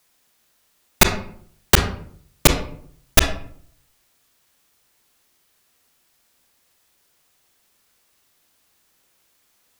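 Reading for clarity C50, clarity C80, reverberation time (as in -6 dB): 8.5 dB, 12.0 dB, 0.60 s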